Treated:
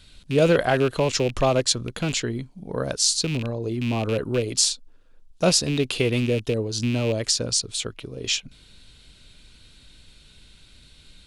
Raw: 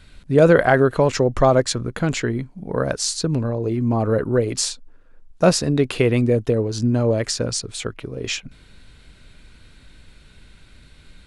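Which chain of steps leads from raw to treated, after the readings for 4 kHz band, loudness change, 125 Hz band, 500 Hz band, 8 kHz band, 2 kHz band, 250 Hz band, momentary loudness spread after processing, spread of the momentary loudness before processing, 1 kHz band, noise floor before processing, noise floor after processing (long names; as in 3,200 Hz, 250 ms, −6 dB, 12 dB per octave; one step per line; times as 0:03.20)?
+3.5 dB, −3.0 dB, −5.0 dB, −5.5 dB, +2.5 dB, −4.0 dB, −5.0 dB, 9 LU, 11 LU, −5.5 dB, −49 dBFS, −53 dBFS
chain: loose part that buzzes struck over −23 dBFS, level −21 dBFS
high shelf with overshoot 2,500 Hz +7 dB, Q 1.5
level −5 dB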